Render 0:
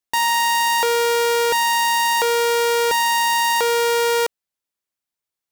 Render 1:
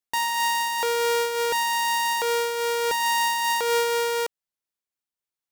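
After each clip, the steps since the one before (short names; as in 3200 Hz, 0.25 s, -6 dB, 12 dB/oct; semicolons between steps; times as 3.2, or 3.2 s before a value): noise-modulated level, depth 60%; gain -2.5 dB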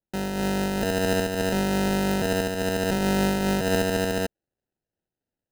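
AGC gain up to 4.5 dB; HPF 430 Hz 6 dB/oct; sample-and-hold 39×; gain -3.5 dB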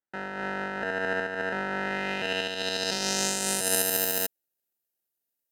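RIAA curve recording; low-pass sweep 1600 Hz -> 15000 Hz, 1.75–4.08; gain -5 dB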